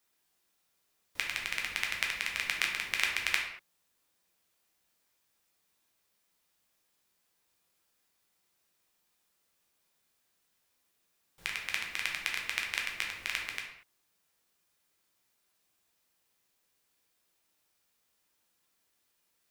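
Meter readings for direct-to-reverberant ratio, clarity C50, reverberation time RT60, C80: −0.5 dB, 4.5 dB, non-exponential decay, 7.5 dB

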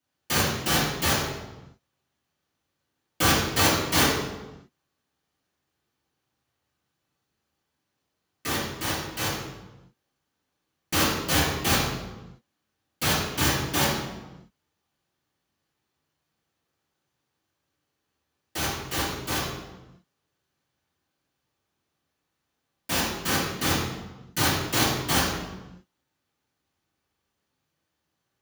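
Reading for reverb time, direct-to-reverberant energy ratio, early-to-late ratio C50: 1.1 s, −12.0 dB, 0.5 dB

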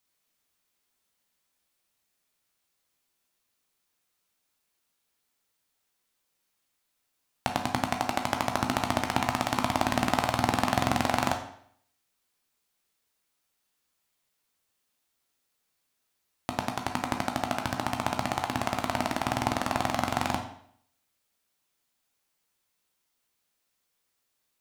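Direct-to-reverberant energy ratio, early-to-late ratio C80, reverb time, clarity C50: 3.5 dB, 11.5 dB, 0.65 s, 8.0 dB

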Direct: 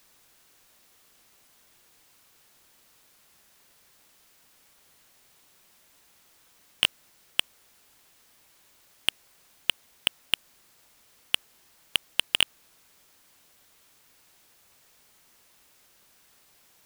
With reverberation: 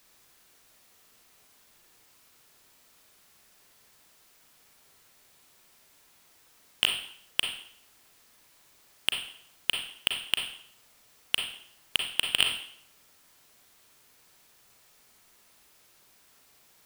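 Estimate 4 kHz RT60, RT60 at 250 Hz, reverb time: 0.60 s, 0.55 s, 0.65 s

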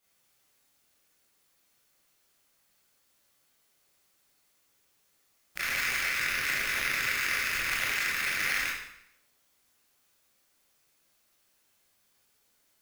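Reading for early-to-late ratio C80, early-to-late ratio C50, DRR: 4.0 dB, 1.0 dB, −8.5 dB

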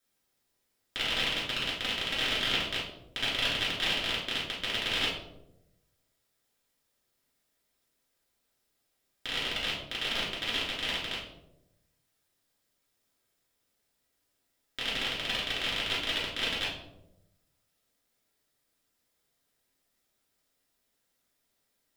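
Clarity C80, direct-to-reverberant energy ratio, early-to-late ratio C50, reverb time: 7.0 dB, −8.0 dB, 3.0 dB, 0.90 s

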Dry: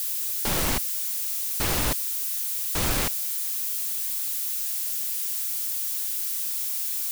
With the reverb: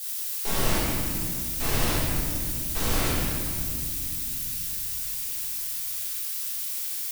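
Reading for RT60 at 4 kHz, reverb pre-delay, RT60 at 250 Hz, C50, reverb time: 1.6 s, 3 ms, 4.4 s, −2.5 dB, 2.5 s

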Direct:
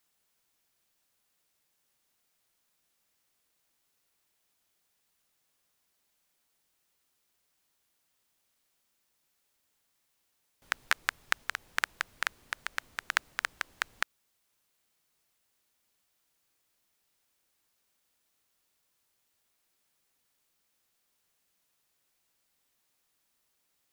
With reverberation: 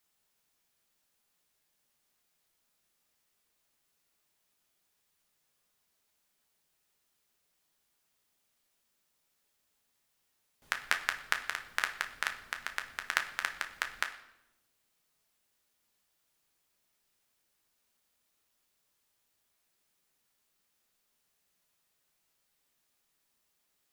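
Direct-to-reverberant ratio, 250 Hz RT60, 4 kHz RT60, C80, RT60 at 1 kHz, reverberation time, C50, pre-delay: 4.5 dB, 1.4 s, 0.70 s, 14.0 dB, 0.80 s, 0.95 s, 11.0 dB, 5 ms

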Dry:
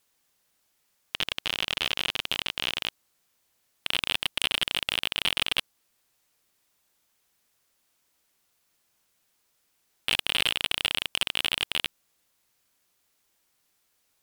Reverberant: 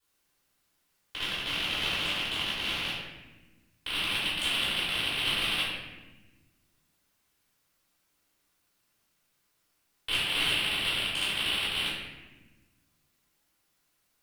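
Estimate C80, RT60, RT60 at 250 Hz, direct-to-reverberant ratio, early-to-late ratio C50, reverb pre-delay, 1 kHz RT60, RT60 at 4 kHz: 2.5 dB, 1.2 s, 1.9 s, −14.5 dB, −1.0 dB, 3 ms, 1.0 s, 0.80 s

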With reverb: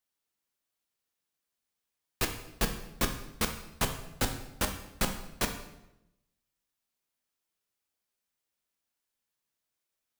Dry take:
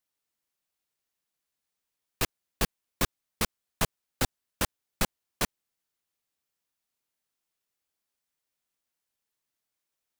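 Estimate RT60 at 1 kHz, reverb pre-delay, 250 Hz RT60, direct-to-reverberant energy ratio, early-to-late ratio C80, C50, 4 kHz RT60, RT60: 0.85 s, 6 ms, 1.0 s, 4.5 dB, 11.0 dB, 8.5 dB, 0.75 s, 0.90 s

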